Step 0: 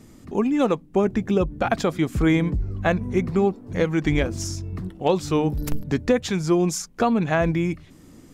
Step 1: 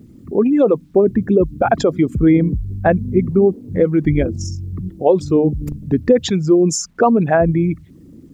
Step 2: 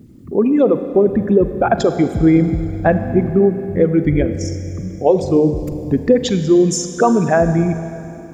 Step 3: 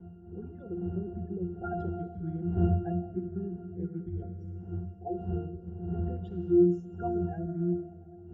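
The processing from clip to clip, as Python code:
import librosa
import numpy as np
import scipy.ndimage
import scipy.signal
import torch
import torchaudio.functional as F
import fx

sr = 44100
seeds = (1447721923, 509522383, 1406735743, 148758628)

y1 = fx.envelope_sharpen(x, sr, power=2.0)
y1 = fx.highpass(y1, sr, hz=90.0, slope=6)
y1 = fx.quant_dither(y1, sr, seeds[0], bits=12, dither='none')
y1 = y1 * 10.0 ** (7.5 / 20.0)
y2 = fx.rev_schroeder(y1, sr, rt60_s=3.0, comb_ms=33, drr_db=9.0)
y3 = fx.spec_quant(y2, sr, step_db=30)
y3 = fx.dmg_wind(y3, sr, seeds[1], corner_hz=290.0, level_db=-19.0)
y3 = fx.octave_resonator(y3, sr, note='F', decay_s=0.34)
y3 = y3 * 10.0 ** (-7.0 / 20.0)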